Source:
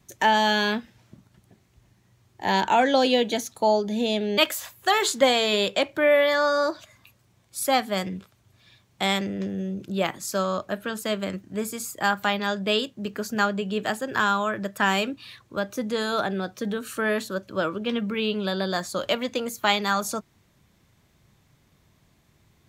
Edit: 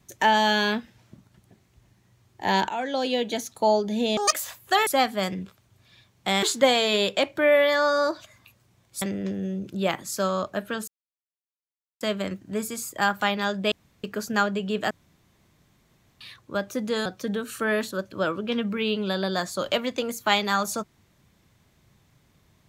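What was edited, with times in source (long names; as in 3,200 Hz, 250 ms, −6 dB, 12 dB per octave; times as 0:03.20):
0:02.69–0:03.66: fade in, from −12.5 dB
0:04.17–0:04.48: play speed 198%
0:07.61–0:09.17: move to 0:05.02
0:11.03: splice in silence 1.13 s
0:12.74–0:13.06: fill with room tone
0:13.93–0:15.23: fill with room tone
0:16.08–0:16.43: remove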